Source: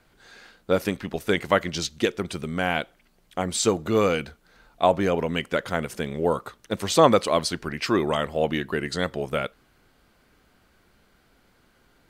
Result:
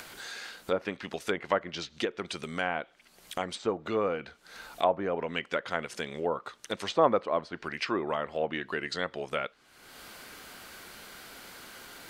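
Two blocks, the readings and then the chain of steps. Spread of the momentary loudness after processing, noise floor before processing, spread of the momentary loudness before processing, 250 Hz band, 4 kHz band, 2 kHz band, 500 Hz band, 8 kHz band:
17 LU, -62 dBFS, 9 LU, -10.0 dB, -7.0 dB, -5.0 dB, -7.0 dB, -13.5 dB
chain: tilt EQ +2 dB/octave; low-pass that closes with the level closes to 1.2 kHz, closed at -19.5 dBFS; bass shelf 200 Hz -6.5 dB; upward compressor, threshold -27 dBFS; trim -4 dB

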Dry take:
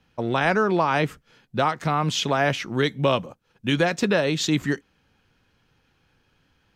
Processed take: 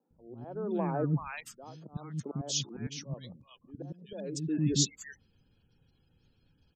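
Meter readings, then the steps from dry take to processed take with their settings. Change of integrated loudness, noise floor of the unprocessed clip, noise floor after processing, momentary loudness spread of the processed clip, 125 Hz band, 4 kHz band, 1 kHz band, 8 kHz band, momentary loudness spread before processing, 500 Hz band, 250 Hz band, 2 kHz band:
-11.0 dB, -67 dBFS, -71 dBFS, 19 LU, -7.0 dB, -9.5 dB, -19.0 dB, 0.0 dB, 8 LU, -15.0 dB, -9.5 dB, -22.5 dB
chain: spectral gate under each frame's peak -20 dB strong; slow attack 642 ms; FFT filter 240 Hz 0 dB, 2 kHz -15 dB, 5.5 kHz +6 dB; three bands offset in time mids, lows, highs 100/380 ms, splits 290/1100 Hz

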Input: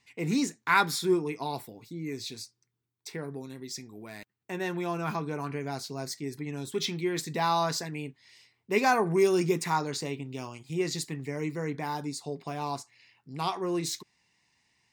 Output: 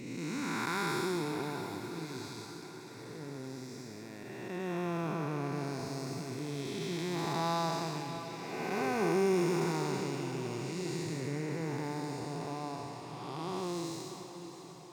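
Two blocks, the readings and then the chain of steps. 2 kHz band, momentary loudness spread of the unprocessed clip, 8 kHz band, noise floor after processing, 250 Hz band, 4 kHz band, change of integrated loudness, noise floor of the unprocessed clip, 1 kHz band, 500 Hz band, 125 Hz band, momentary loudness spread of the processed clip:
-7.0 dB, 16 LU, -6.5 dB, -47 dBFS, -3.0 dB, -6.0 dB, -5.5 dB, -81 dBFS, -6.5 dB, -4.5 dB, -1.5 dB, 13 LU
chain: spectral blur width 535 ms; echo that smears into a reverb 651 ms, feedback 59%, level -10 dB

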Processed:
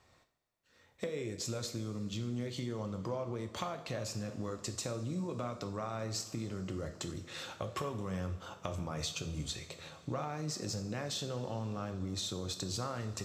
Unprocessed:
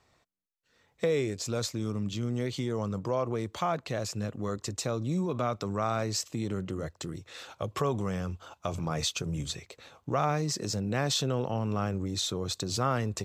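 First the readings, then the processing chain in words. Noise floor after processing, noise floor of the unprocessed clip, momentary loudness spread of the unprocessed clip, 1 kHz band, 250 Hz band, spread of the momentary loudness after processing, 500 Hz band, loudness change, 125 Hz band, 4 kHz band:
-68 dBFS, -71 dBFS, 9 LU, -9.0 dB, -7.0 dB, 4 LU, -8.5 dB, -7.5 dB, -6.5 dB, -6.0 dB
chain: compression, threshold -36 dBFS, peak gain reduction 13 dB; two-slope reverb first 0.54 s, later 4.7 s, from -18 dB, DRR 5.5 dB

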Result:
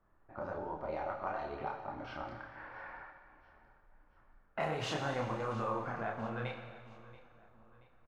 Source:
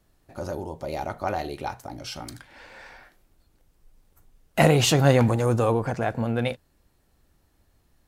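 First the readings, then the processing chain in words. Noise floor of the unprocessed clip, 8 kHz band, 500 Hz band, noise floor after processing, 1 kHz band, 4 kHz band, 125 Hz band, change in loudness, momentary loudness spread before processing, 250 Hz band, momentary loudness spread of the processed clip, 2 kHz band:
-66 dBFS, -23.0 dB, -14.0 dB, -66 dBFS, -9.0 dB, -16.5 dB, -19.5 dB, -15.5 dB, 18 LU, -17.0 dB, 18 LU, -11.0 dB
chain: median filter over 5 samples; level-controlled noise filter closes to 1.6 kHz, open at -16 dBFS; low-pass 9.6 kHz 12 dB/octave; peaking EQ 1.2 kHz +13 dB 1.6 oct; compression 3:1, threshold -28 dBFS, peak gain reduction 15 dB; feedback comb 110 Hz, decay 1.5 s, harmonics all, mix 70%; chorus voices 6, 1.1 Hz, delay 29 ms, depth 3.5 ms; feedback delay 680 ms, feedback 42%, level -19 dB; Schroeder reverb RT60 1.6 s, combs from 29 ms, DRR 6.5 dB; trim +3 dB

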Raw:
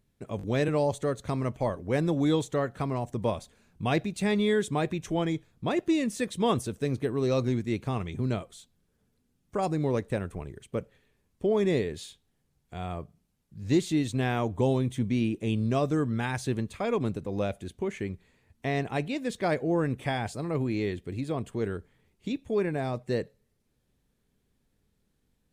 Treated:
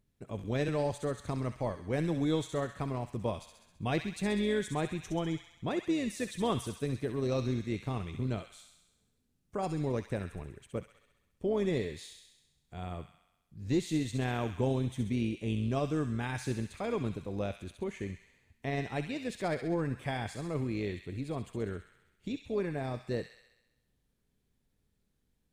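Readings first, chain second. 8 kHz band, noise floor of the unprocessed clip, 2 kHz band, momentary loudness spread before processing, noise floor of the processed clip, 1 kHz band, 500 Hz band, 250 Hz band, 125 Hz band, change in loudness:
-4.0 dB, -74 dBFS, -5.0 dB, 11 LU, -77 dBFS, -5.5 dB, -5.5 dB, -5.0 dB, -4.0 dB, -5.0 dB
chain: bass shelf 140 Hz +3.5 dB; AM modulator 160 Hz, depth 20%; feedback echo behind a high-pass 66 ms, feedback 64%, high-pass 1.8 kHz, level -5 dB; trim -4.5 dB

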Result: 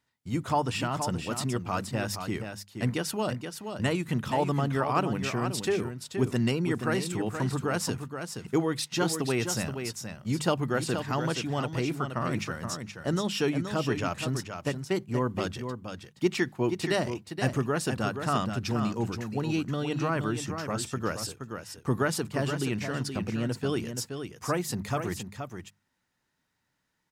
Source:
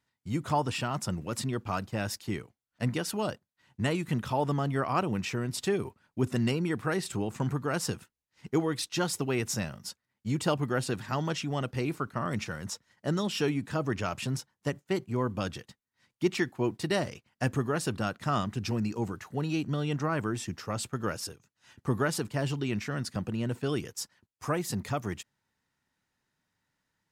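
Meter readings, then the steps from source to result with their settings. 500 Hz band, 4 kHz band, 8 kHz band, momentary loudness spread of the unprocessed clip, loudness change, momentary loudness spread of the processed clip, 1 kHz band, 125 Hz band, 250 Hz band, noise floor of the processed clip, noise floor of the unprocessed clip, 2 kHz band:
+2.0 dB, +2.0 dB, +2.0 dB, 8 LU, +1.5 dB, 8 LU, +2.0 dB, +1.0 dB, +2.0 dB, -78 dBFS, under -85 dBFS, +2.0 dB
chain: hum notches 50/100/150/200 Hz; on a send: delay 474 ms -7.5 dB; on the sum: trim +1.5 dB

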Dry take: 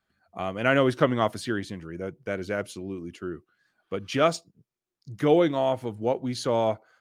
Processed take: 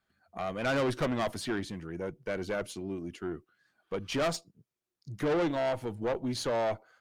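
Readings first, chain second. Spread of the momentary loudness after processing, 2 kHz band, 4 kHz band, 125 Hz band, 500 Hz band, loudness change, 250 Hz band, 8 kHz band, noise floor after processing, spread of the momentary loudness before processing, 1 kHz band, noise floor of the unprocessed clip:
11 LU, -6.0 dB, -4.0 dB, -6.0 dB, -6.5 dB, -6.5 dB, -6.0 dB, -1.5 dB, under -85 dBFS, 16 LU, -6.5 dB, under -85 dBFS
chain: valve stage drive 25 dB, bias 0.4

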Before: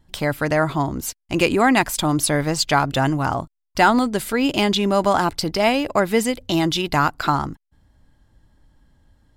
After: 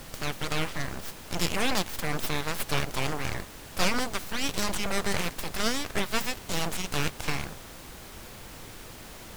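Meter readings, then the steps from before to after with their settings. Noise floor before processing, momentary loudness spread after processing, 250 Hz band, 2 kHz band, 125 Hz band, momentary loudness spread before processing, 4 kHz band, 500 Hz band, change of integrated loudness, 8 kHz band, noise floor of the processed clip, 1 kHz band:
-77 dBFS, 16 LU, -14.0 dB, -8.5 dB, -10.0 dB, 8 LU, -6.0 dB, -13.5 dB, -10.5 dB, -5.5 dB, -45 dBFS, -14.0 dB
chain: spectral peaks clipped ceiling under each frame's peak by 19 dB; full-wave rectifier; added noise pink -36 dBFS; trim -8 dB

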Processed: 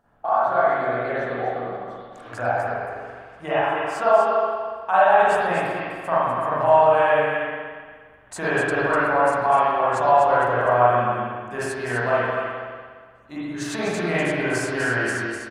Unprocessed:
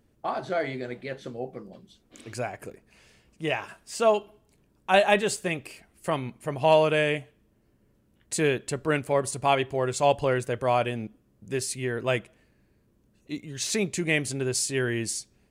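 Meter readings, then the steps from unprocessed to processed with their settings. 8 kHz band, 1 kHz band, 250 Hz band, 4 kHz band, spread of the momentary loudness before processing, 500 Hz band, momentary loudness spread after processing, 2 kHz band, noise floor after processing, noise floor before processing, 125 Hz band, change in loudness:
-7.0 dB, +10.5 dB, +2.0 dB, -3.5 dB, 15 LU, +5.5 dB, 16 LU, +7.0 dB, -47 dBFS, -66 dBFS, +0.5 dB, +5.5 dB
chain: high-order bell 1 kHz +15.5 dB; compression 2:1, threshold -23 dBFS, peak gain reduction 12 dB; on a send: delay 249 ms -6 dB; on the sum: spring tank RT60 1.7 s, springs 41/58 ms, chirp 70 ms, DRR -10 dB; trim -7 dB

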